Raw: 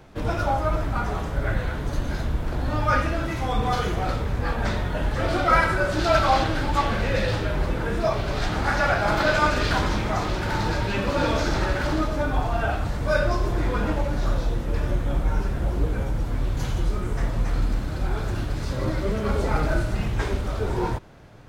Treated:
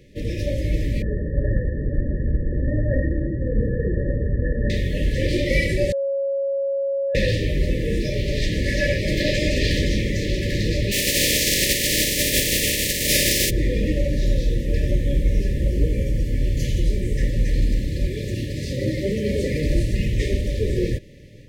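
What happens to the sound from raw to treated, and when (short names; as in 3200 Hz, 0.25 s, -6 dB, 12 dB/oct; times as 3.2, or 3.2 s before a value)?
1.02–4.7 brick-wall FIR low-pass 1900 Hz
5.92–7.15 bleep 551 Hz -24 dBFS
10.91–13.49 spectral contrast lowered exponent 0.27
15.67–16.69 notch 3800 Hz, Q 13
18.07–19.66 HPF 87 Hz
whole clip: FFT band-reject 610–1700 Hz; AGC gain up to 4 dB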